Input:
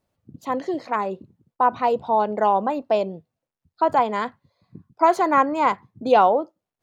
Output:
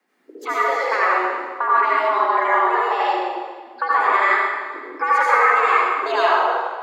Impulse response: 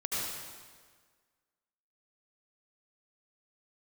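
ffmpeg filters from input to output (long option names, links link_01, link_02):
-filter_complex "[0:a]acrossover=split=120|270|580[link_01][link_02][link_03][link_04];[link_01]acompressor=threshold=-53dB:ratio=4[link_05];[link_02]acompressor=threshold=-39dB:ratio=4[link_06];[link_03]acompressor=threshold=-37dB:ratio=4[link_07];[link_04]acompressor=threshold=-26dB:ratio=4[link_08];[link_05][link_06][link_07][link_08]amix=inputs=4:normalize=0,equalizer=frequency=1700:width_type=o:width=0.94:gain=14.5,asplit=2[link_09][link_10];[link_10]acompressor=threshold=-28dB:ratio=6,volume=-2dB[link_11];[link_09][link_11]amix=inputs=2:normalize=0,afreqshift=170[link_12];[1:a]atrim=start_sample=2205[link_13];[link_12][link_13]afir=irnorm=-1:irlink=0,volume=-1.5dB"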